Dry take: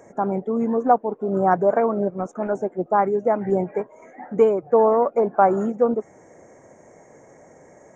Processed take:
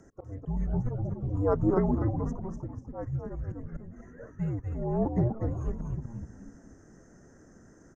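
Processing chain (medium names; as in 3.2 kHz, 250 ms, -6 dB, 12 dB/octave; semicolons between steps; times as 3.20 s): slow attack 306 ms; frequency-shifting echo 246 ms, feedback 40%, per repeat -75 Hz, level -3.5 dB; frequency shift -280 Hz; trim -7.5 dB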